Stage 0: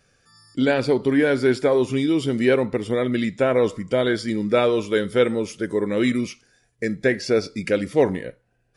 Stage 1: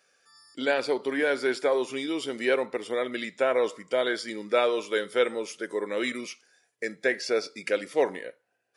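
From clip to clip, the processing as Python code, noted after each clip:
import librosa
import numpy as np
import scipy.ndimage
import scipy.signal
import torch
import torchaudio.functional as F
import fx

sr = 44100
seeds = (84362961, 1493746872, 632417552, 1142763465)

y = scipy.signal.sosfilt(scipy.signal.butter(2, 490.0, 'highpass', fs=sr, output='sos'), x)
y = y * librosa.db_to_amplitude(-2.5)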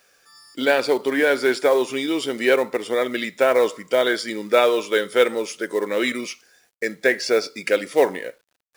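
y = fx.quant_companded(x, sr, bits=6)
y = y * librosa.db_to_amplitude(7.0)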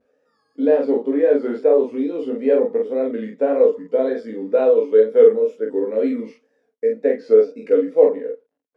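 y = fx.wow_flutter(x, sr, seeds[0], rate_hz=2.1, depth_cents=130.0)
y = fx.double_bandpass(y, sr, hz=350.0, octaves=0.72)
y = fx.room_early_taps(y, sr, ms=(18, 46), db=(-4.0, -3.0))
y = y * librosa.db_to_amplitude(6.5)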